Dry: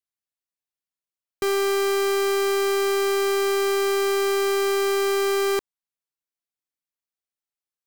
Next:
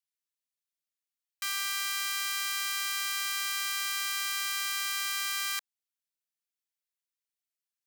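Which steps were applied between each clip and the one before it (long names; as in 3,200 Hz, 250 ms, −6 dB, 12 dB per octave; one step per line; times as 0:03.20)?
Bessel high-pass filter 2,000 Hz, order 8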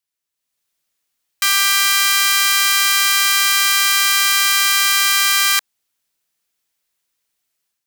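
automatic gain control gain up to 10 dB
level +7.5 dB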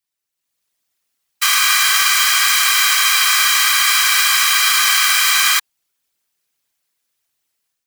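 random phases in short frames
level +1 dB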